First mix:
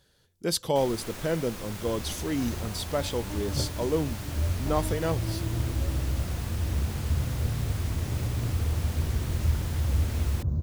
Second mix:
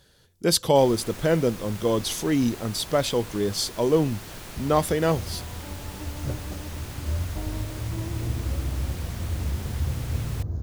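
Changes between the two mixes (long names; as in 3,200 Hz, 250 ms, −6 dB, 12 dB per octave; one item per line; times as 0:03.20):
speech +6.5 dB
second sound: entry +2.70 s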